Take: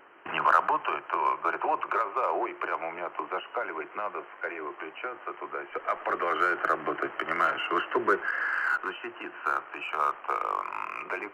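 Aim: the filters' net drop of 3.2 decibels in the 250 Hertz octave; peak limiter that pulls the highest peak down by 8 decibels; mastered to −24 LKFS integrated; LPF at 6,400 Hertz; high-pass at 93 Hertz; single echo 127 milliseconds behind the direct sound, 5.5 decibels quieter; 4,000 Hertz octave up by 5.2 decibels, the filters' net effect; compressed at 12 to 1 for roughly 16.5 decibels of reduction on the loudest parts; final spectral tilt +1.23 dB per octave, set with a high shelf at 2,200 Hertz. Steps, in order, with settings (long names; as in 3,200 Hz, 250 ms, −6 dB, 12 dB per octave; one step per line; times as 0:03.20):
high-pass filter 93 Hz
low-pass filter 6,400 Hz
parametric band 250 Hz −6 dB
high-shelf EQ 2,200 Hz +3.5 dB
parametric band 4,000 Hz +5.5 dB
downward compressor 12 to 1, threshold −32 dBFS
brickwall limiter −26.5 dBFS
single-tap delay 127 ms −5.5 dB
level +13.5 dB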